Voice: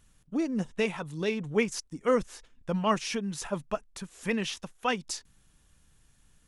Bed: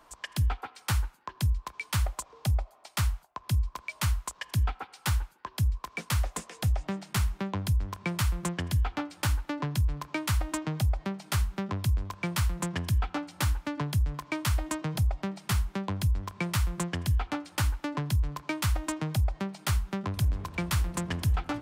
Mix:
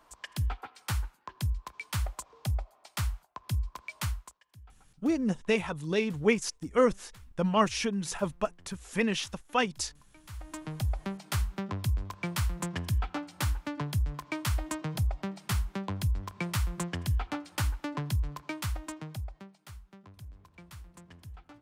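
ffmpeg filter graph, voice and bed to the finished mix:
-filter_complex "[0:a]adelay=4700,volume=1.5dB[a];[1:a]volume=20dB,afade=t=out:st=4.02:d=0.37:silence=0.0749894,afade=t=in:st=10.23:d=0.76:silence=0.0630957,afade=t=out:st=18.09:d=1.52:silence=0.125893[b];[a][b]amix=inputs=2:normalize=0"

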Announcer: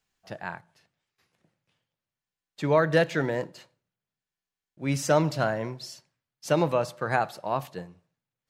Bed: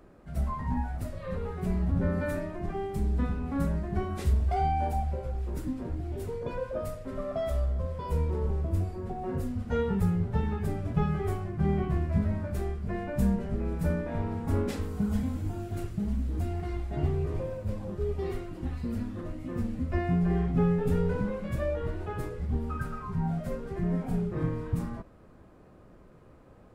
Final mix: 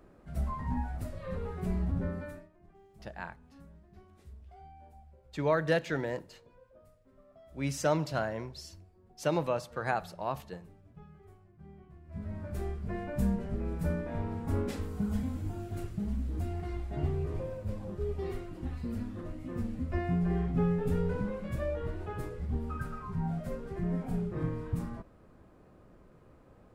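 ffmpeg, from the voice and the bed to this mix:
-filter_complex "[0:a]adelay=2750,volume=-6dB[a];[1:a]volume=19dB,afade=t=out:st=1.82:d=0.67:silence=0.0749894,afade=t=in:st=12.04:d=0.61:silence=0.0794328[b];[a][b]amix=inputs=2:normalize=0"

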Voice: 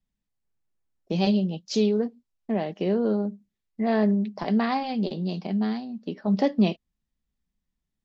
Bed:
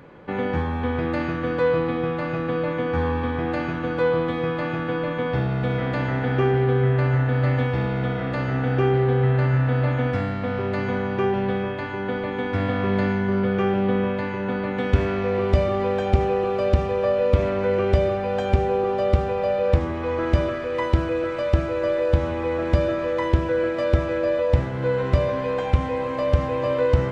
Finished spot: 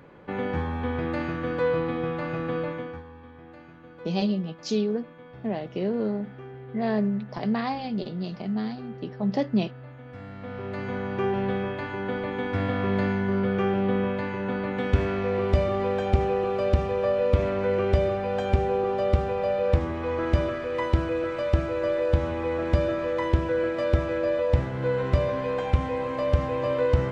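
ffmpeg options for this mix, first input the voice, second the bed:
-filter_complex "[0:a]adelay=2950,volume=-3dB[a];[1:a]volume=15dB,afade=t=out:st=2.58:d=0.45:silence=0.125893,afade=t=in:st=10.05:d=1.36:silence=0.112202[b];[a][b]amix=inputs=2:normalize=0"

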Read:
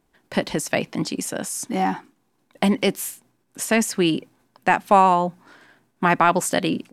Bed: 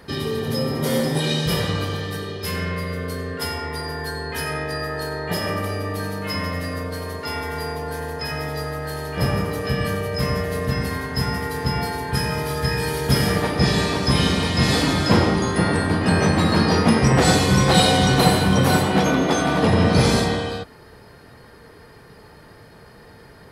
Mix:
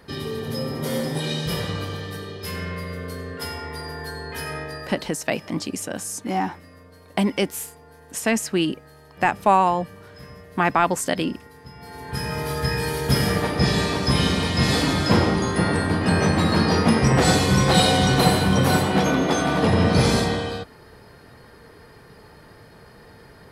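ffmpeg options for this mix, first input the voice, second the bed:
-filter_complex "[0:a]adelay=4550,volume=-2dB[a];[1:a]volume=14dB,afade=t=out:st=4.58:d=0.53:silence=0.16788,afade=t=in:st=11.79:d=0.7:silence=0.11885[b];[a][b]amix=inputs=2:normalize=0"

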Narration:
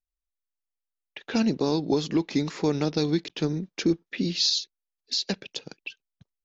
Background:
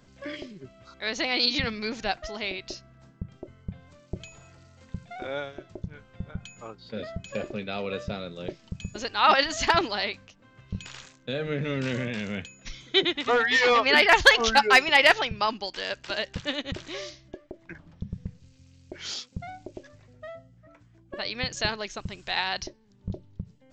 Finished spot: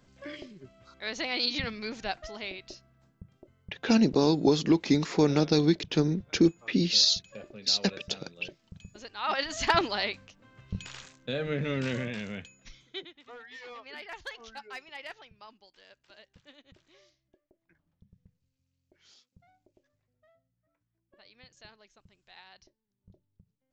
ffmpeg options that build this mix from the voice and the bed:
-filter_complex "[0:a]adelay=2550,volume=1.5dB[a];[1:a]volume=6dB,afade=t=out:st=2.27:d=0.89:silence=0.421697,afade=t=in:st=9.25:d=0.54:silence=0.281838,afade=t=out:st=11.78:d=1.32:silence=0.0668344[b];[a][b]amix=inputs=2:normalize=0"

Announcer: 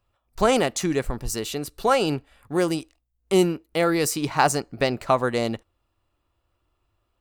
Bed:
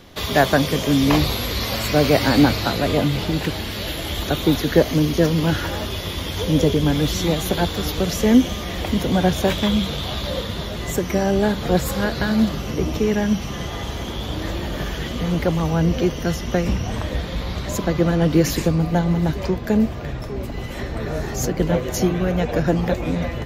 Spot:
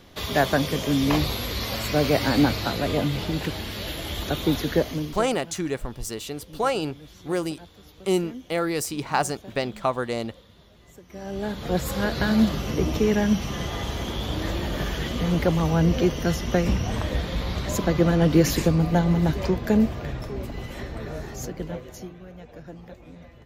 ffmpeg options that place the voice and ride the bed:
-filter_complex "[0:a]adelay=4750,volume=-4dB[a];[1:a]volume=19.5dB,afade=t=out:st=4.65:d=0.65:silence=0.0891251,afade=t=in:st=11.08:d=1.21:silence=0.0595662,afade=t=out:st=19.7:d=2.45:silence=0.0891251[b];[a][b]amix=inputs=2:normalize=0"

